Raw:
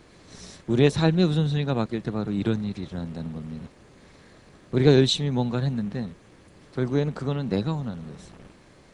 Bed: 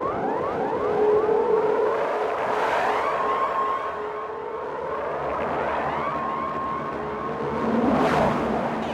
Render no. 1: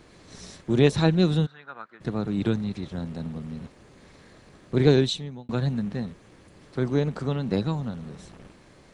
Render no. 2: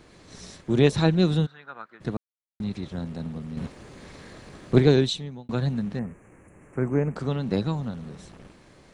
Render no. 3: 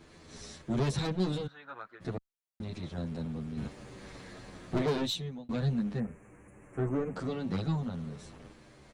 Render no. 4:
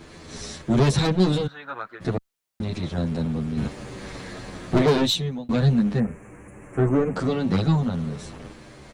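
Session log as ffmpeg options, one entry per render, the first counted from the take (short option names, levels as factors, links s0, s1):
-filter_complex "[0:a]asplit=3[s0][s1][s2];[s0]afade=t=out:st=1.45:d=0.02[s3];[s1]bandpass=f=1400:t=q:w=4.1,afade=t=in:st=1.45:d=0.02,afade=t=out:st=2:d=0.02[s4];[s2]afade=t=in:st=2:d=0.02[s5];[s3][s4][s5]amix=inputs=3:normalize=0,asplit=2[s6][s7];[s6]atrim=end=5.49,asetpts=PTS-STARTPTS,afade=t=out:st=4.81:d=0.68[s8];[s7]atrim=start=5.49,asetpts=PTS-STARTPTS,afade=t=in:d=0.004:c=hsin[s9];[s8][s9]concat=n=2:v=0:a=1"
-filter_complex "[0:a]asettb=1/sr,asplit=3[s0][s1][s2];[s0]atrim=end=3.574[s3];[s1]atrim=start=3.57:end=4.8,asetpts=PTS-STARTPTS,afade=t=in:d=0.004:c=qsin,afade=t=out:st=1.226:d=0.004:c=qsin,acontrast=76[s4];[s2]atrim=start=4.796[s5];[s3][s4]acrossfade=d=0.004:c1=hsin:c2=qsin[s6];[s6][s5]acrossfade=d=0.004:c1=qsin:c2=hsin,asettb=1/sr,asplit=3[s7][s8][s9];[s7]atrim=end=5.994[s10];[s8]atrim=start=5.99:end=7.16,asetpts=PTS-STARTPTS,afade=t=in:d=0.004:c=qsin,afade=t=out:st=1.166:d=0.004:c=qsin,asuperstop=centerf=4200:order=8:qfactor=1[s11];[s9]atrim=start=7.156[s12];[s10][s11]acrossfade=d=0.004:c1=hsin:c2=qsin[s13];[s13][s12]acrossfade=d=0.004:c1=qsin:c2=hsin,asplit=3[s14][s15][s16];[s14]atrim=end=2.17,asetpts=PTS-STARTPTS,afade=t=out:st=2.166:d=0.004:c=hsin[s17];[s15]atrim=start=2.17:end=2.6,asetpts=PTS-STARTPTS,volume=0[s18];[s16]atrim=start=2.6,asetpts=PTS-STARTPTS,afade=t=in:d=0.004:c=hsin[s19];[s17][s18][s19]concat=n=3:v=0:a=1"
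-filter_complex "[0:a]asoftclip=type=tanh:threshold=0.0841,asplit=2[s0][s1];[s1]adelay=9.3,afreqshift=-0.38[s2];[s0][s2]amix=inputs=2:normalize=1"
-af "volume=3.55"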